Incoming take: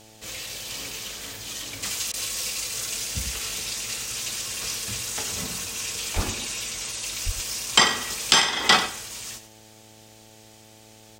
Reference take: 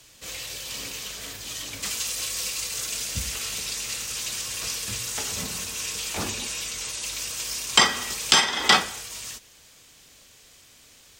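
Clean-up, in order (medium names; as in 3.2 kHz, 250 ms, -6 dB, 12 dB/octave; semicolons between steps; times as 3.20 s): de-hum 109.2 Hz, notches 8; 6.15–6.27 s: high-pass 140 Hz 24 dB/octave; 7.25–7.37 s: high-pass 140 Hz 24 dB/octave; interpolate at 2.12 s, 16 ms; inverse comb 94 ms -12 dB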